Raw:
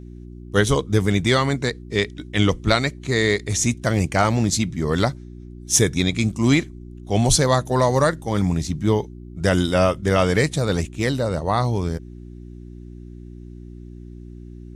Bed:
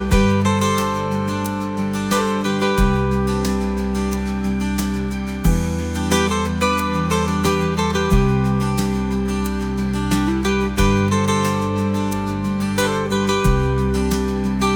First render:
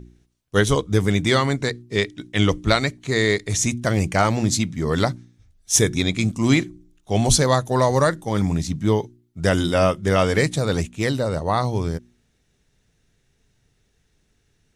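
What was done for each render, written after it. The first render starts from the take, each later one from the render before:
hum removal 60 Hz, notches 6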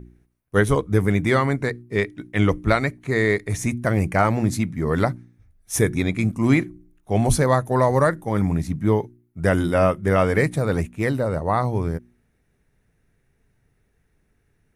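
flat-topped bell 4,800 Hz −12 dB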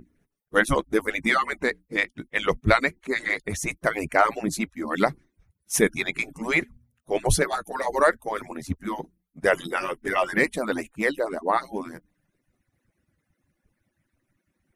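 harmonic-percussive split with one part muted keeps percussive
dynamic equaliser 2,700 Hz, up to +5 dB, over −36 dBFS, Q 0.88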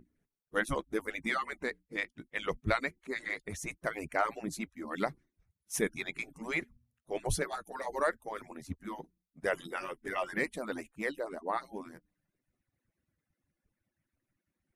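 level −11 dB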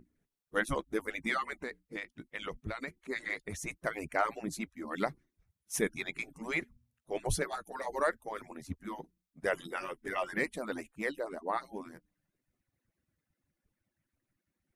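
0:01.54–0:02.88: downward compressor, threshold −34 dBFS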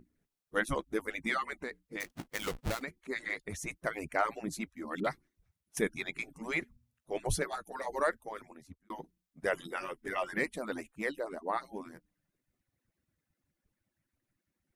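0:02.00–0:02.82: each half-wave held at its own peak
0:05.00–0:05.77: all-pass dispersion highs, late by 45 ms, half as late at 760 Hz
0:08.16–0:08.90: fade out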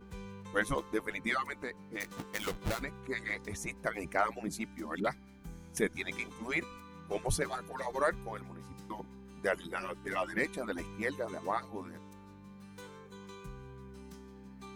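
mix in bed −31 dB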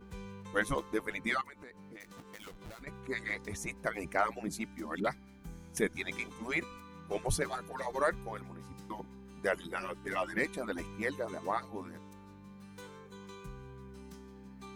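0:01.41–0:02.87: downward compressor 4 to 1, threshold −48 dBFS

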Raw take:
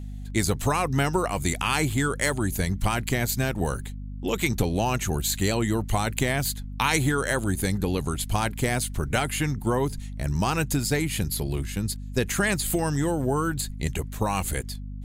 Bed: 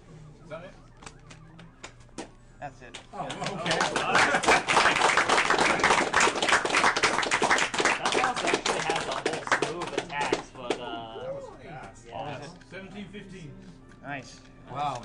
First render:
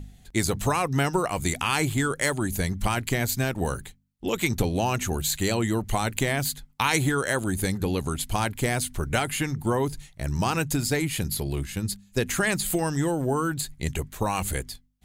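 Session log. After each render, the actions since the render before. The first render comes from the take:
hum removal 50 Hz, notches 5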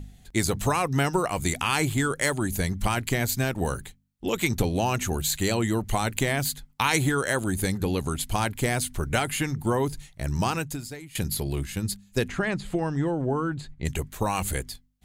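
0:10.45–0:11.15: fade out quadratic, to −18 dB
0:12.28–0:13.85: head-to-tape spacing loss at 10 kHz 24 dB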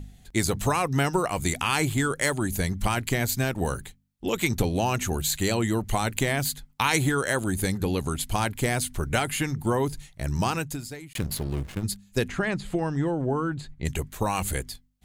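0:11.13–0:11.84: slack as between gear wheels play −29 dBFS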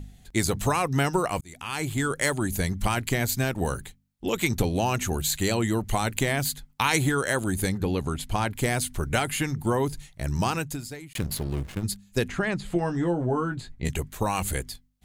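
0:01.41–0:02.14: fade in
0:07.69–0:08.53: high-shelf EQ 5,200 Hz −9 dB
0:12.74–0:13.91: double-tracking delay 17 ms −5.5 dB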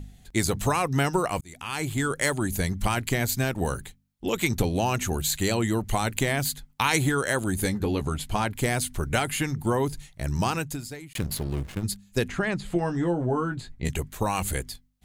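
0:07.59–0:08.44: double-tracking delay 14 ms −8.5 dB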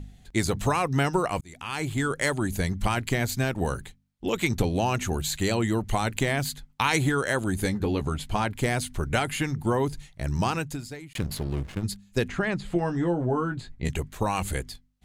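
high-shelf EQ 9,000 Hz −10 dB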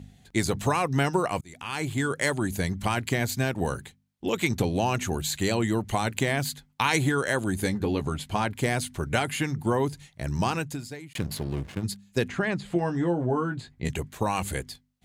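high-pass filter 83 Hz
notch filter 1,300 Hz, Q 23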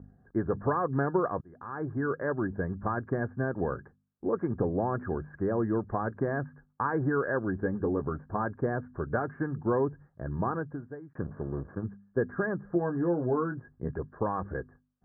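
Chebyshev low-pass with heavy ripple 1,700 Hz, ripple 6 dB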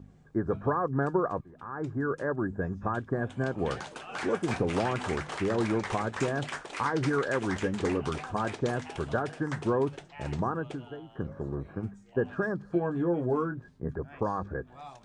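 mix in bed −15.5 dB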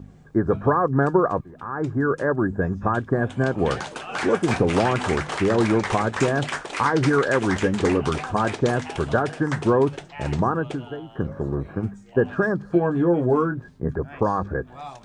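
level +8.5 dB

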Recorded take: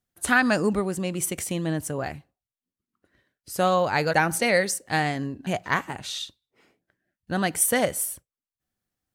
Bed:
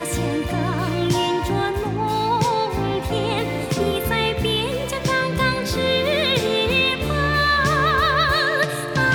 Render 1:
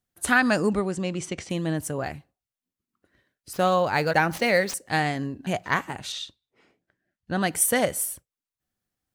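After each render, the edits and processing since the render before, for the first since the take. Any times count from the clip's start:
0:00.70–0:01.49: low-pass filter 10,000 Hz → 5,300 Hz 24 dB per octave
0:03.53–0:04.74: running median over 5 samples
0:06.12–0:07.41: high-frequency loss of the air 51 metres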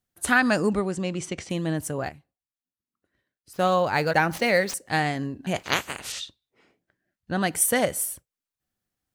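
0:02.09–0:03.69: expander for the loud parts, over −37 dBFS
0:05.55–0:06.19: ceiling on every frequency bin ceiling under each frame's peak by 23 dB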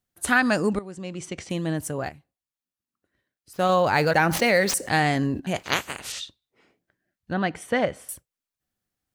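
0:00.79–0:01.50: fade in linear, from −14.5 dB
0:03.69–0:05.40: envelope flattener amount 50%
0:07.33–0:08.09: low-pass filter 3,000 Hz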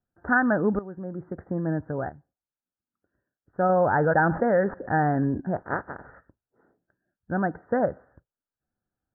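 Butterworth low-pass 1,700 Hz 96 dB per octave
notch filter 1,100 Hz, Q 7.8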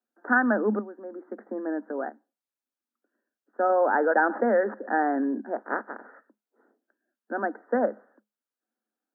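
Chebyshev high-pass filter 210 Hz, order 10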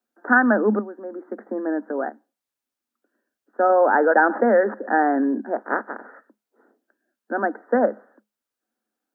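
level +5.5 dB

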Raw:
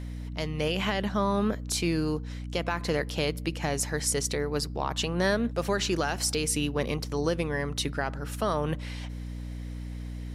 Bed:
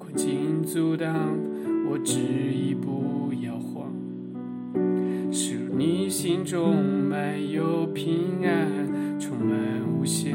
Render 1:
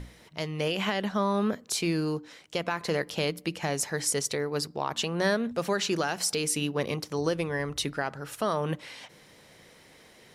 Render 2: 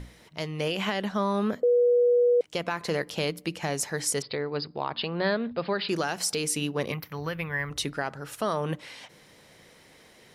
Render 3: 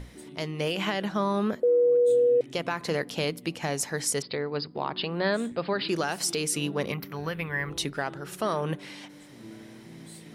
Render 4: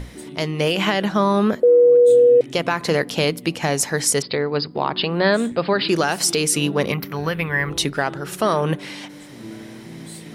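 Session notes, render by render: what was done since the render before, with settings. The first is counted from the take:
mains-hum notches 60/120/180/240/300 Hz
0:01.63–0:02.41: beep over 485 Hz −17.5 dBFS; 0:04.22–0:05.89: Chebyshev low-pass filter 5,000 Hz, order 10; 0:06.92–0:07.71: drawn EQ curve 160 Hz 0 dB, 340 Hz −11 dB, 2,100 Hz +6 dB, 9,100 Hz −22 dB, 13,000 Hz +13 dB
mix in bed −20.5 dB
level +9 dB

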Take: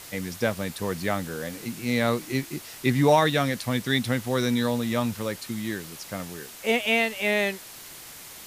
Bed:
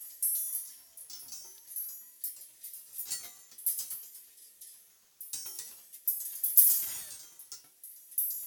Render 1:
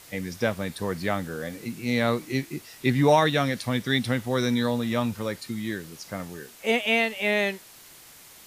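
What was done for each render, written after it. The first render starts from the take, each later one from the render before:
noise reduction from a noise print 6 dB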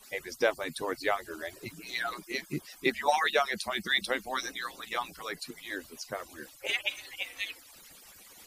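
harmonic-percussive split with one part muted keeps percussive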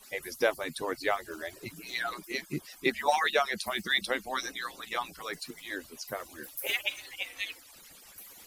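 mix in bed −19 dB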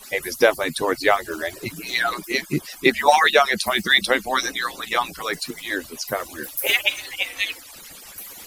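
level +11.5 dB
brickwall limiter −2 dBFS, peak gain reduction 2 dB

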